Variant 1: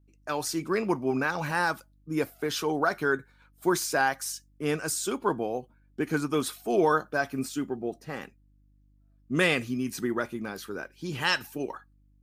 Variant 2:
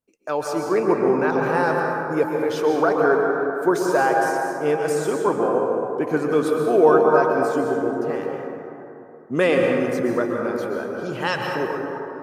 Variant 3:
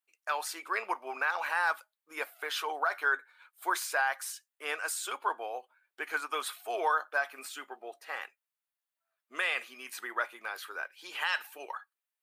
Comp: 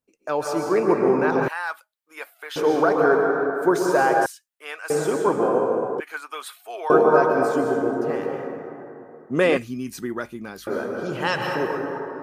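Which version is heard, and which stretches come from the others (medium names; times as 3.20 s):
2
1.48–2.56 s: from 3
4.26–4.90 s: from 3
6.00–6.90 s: from 3
9.57–10.67 s: from 1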